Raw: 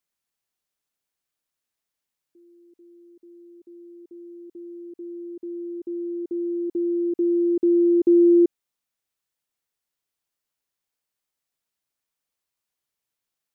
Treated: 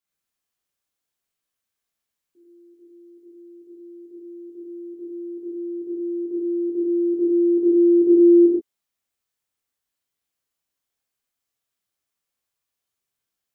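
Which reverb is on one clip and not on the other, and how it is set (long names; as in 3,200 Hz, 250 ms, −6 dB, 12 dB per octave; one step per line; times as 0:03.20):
reverb whose tail is shaped and stops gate 160 ms flat, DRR −6.5 dB
level −6 dB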